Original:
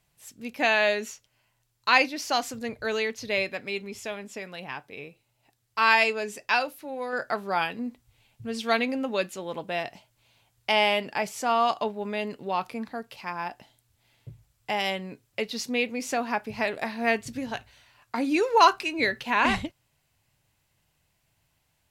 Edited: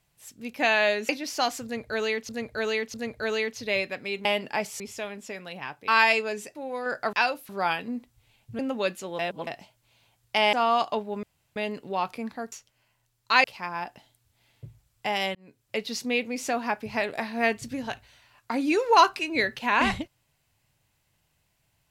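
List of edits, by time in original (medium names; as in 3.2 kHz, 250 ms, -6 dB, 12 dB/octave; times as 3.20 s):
1.09–2.01 s: move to 13.08 s
2.56–3.21 s: loop, 3 plays
4.95–5.79 s: delete
6.46–6.82 s: move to 7.40 s
8.50–8.93 s: delete
9.53–9.81 s: reverse
10.87–11.42 s: move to 3.87 s
12.12 s: insert room tone 0.33 s
14.99–15.42 s: fade in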